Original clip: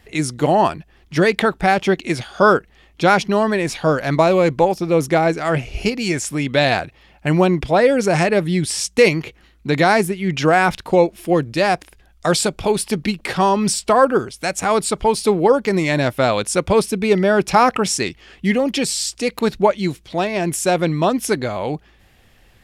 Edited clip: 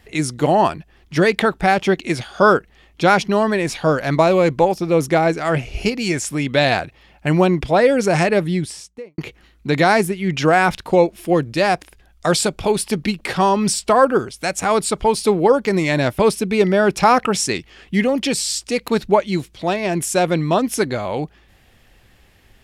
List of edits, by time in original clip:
8.34–9.18 s: studio fade out
16.19–16.70 s: delete

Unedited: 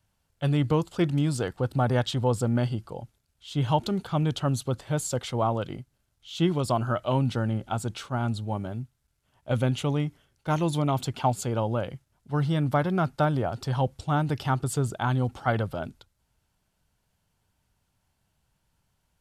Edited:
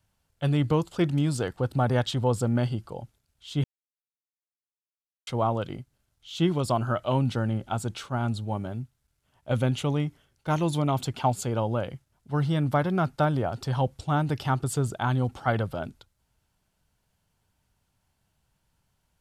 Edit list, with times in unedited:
3.64–5.27 s: mute

